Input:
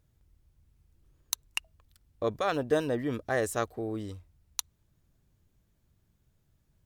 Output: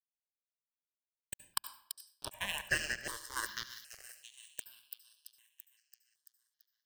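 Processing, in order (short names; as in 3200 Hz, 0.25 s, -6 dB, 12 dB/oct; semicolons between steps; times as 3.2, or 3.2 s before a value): spectral gate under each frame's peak -20 dB weak; ripple EQ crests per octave 1.3, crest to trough 15 dB; in parallel at -2 dB: compressor, threshold -57 dBFS, peak gain reduction 22 dB; on the sum: crossover distortion -40.5 dBFS; thin delay 0.336 s, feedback 62%, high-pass 3600 Hz, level -6.5 dB; on a send at -11.5 dB: reverb RT60 0.65 s, pre-delay 67 ms; on the sum: step phaser 2.6 Hz 690–7000 Hz; gain +11.5 dB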